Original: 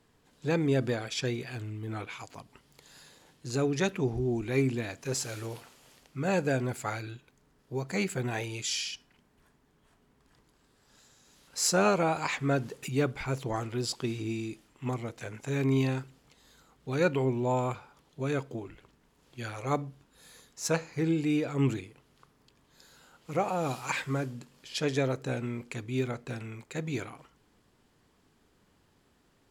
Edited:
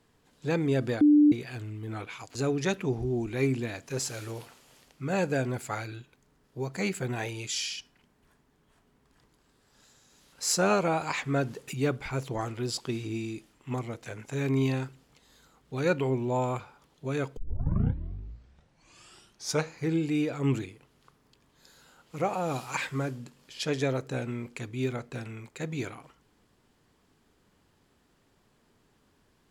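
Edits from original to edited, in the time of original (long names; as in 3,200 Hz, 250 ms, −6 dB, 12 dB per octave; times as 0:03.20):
0:01.01–0:01.32: beep over 296 Hz −15 dBFS
0:02.35–0:03.50: remove
0:18.52: tape start 2.35 s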